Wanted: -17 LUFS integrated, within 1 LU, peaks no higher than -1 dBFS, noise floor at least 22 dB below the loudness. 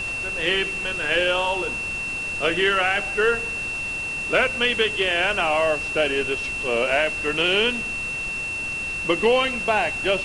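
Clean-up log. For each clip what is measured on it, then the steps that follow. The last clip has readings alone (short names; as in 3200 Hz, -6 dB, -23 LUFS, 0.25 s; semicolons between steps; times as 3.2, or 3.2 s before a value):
steady tone 2700 Hz; tone level -26 dBFS; noise floor -29 dBFS; noise floor target -44 dBFS; loudness -21.5 LUFS; peak -7.0 dBFS; loudness target -17.0 LUFS
-> notch 2700 Hz, Q 30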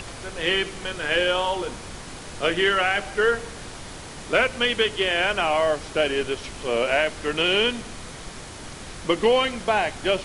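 steady tone none; noise floor -39 dBFS; noise floor target -45 dBFS
-> noise print and reduce 6 dB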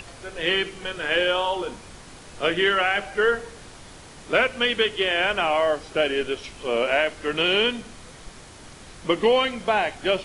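noise floor -45 dBFS; loudness -22.5 LUFS; peak -7.5 dBFS; loudness target -17.0 LUFS
-> gain +5.5 dB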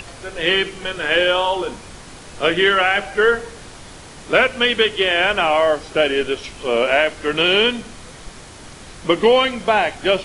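loudness -17.0 LUFS; peak -2.0 dBFS; noise floor -39 dBFS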